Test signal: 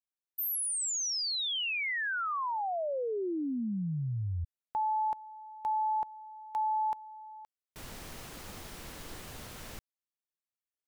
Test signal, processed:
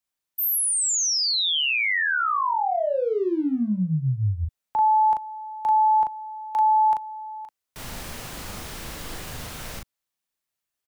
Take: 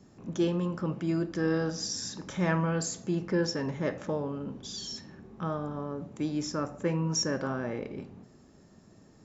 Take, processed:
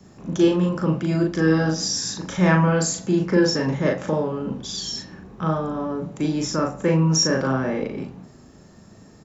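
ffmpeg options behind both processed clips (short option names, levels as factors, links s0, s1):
-filter_complex "[0:a]acrossover=split=340|350|2300[s0][s1][s2][s3];[s1]aeval=exprs='sgn(val(0))*max(abs(val(0))-0.00106,0)':c=same[s4];[s0][s4][s2][s3]amix=inputs=4:normalize=0,asplit=2[s5][s6];[s6]adelay=38,volume=0.708[s7];[s5][s7]amix=inputs=2:normalize=0,volume=2.51"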